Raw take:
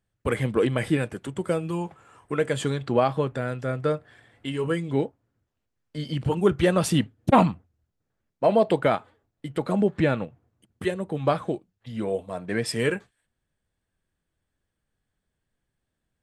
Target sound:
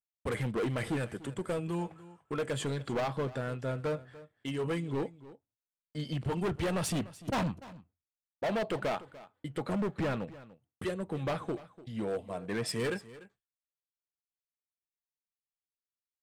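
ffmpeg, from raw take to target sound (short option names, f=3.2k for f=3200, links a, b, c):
-filter_complex "[0:a]agate=range=-33dB:threshold=-44dB:ratio=3:detection=peak,asoftclip=type=hard:threshold=-23.5dB,asplit=2[a][b];[b]aecho=0:1:294:0.126[c];[a][c]amix=inputs=2:normalize=0,volume=-5dB"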